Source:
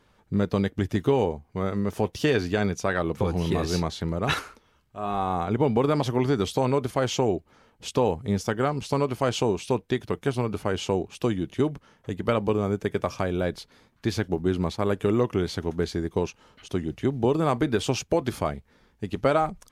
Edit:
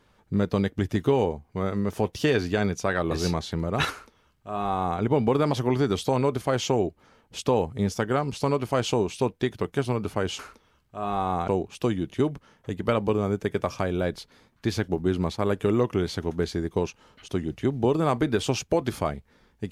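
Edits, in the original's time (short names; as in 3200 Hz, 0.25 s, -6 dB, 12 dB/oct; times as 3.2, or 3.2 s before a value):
3.11–3.6 cut
4.4–5.49 copy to 10.88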